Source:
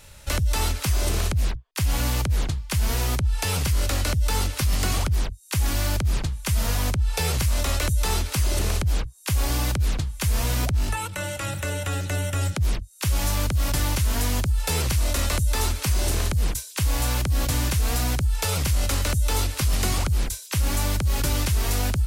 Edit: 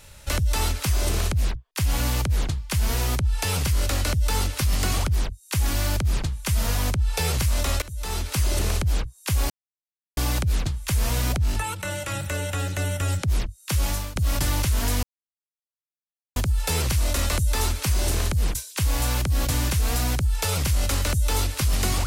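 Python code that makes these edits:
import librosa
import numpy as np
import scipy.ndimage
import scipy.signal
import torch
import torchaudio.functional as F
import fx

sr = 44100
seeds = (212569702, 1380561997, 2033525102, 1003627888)

y = fx.edit(x, sr, fx.fade_in_from(start_s=7.82, length_s=0.56, floor_db=-21.5),
    fx.insert_silence(at_s=9.5, length_s=0.67),
    fx.fade_out_to(start_s=13.18, length_s=0.31, floor_db=-20.0),
    fx.insert_silence(at_s=14.36, length_s=1.33), tone=tone)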